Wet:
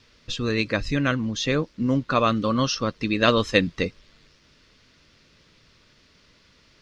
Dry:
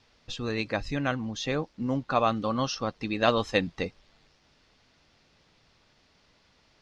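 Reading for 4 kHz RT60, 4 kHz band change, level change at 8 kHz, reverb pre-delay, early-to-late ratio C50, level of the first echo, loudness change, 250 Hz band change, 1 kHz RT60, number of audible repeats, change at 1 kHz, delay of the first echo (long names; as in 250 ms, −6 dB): no reverb audible, +7.0 dB, can't be measured, no reverb audible, no reverb audible, no echo audible, +5.5 dB, +6.5 dB, no reverb audible, no echo audible, +2.5 dB, no echo audible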